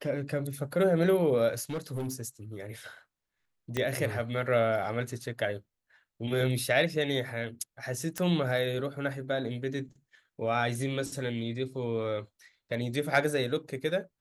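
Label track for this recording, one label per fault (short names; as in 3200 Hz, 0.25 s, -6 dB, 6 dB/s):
1.630000	2.220000	clipped -29.5 dBFS
3.770000	3.770000	pop -16 dBFS
8.180000	8.180000	pop -18 dBFS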